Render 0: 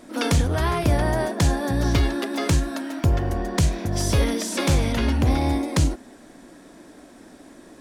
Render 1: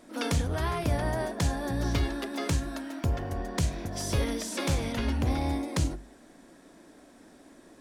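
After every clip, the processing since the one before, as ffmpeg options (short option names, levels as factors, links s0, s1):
-af "bandreject=f=50:t=h:w=6,bandreject=f=100:t=h:w=6,bandreject=f=150:t=h:w=6,bandreject=f=200:t=h:w=6,bandreject=f=250:t=h:w=6,bandreject=f=300:t=h:w=6,bandreject=f=350:t=h:w=6,volume=0.447"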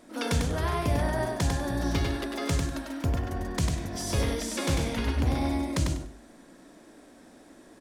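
-af "aecho=1:1:98|196|294:0.631|0.139|0.0305"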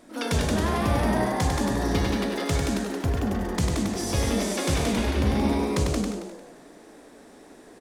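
-filter_complex "[0:a]asplit=5[s0][s1][s2][s3][s4];[s1]adelay=176,afreqshift=140,volume=0.708[s5];[s2]adelay=352,afreqshift=280,volume=0.211[s6];[s3]adelay=528,afreqshift=420,volume=0.0638[s7];[s4]adelay=704,afreqshift=560,volume=0.0191[s8];[s0][s5][s6][s7][s8]amix=inputs=5:normalize=0,volume=1.19"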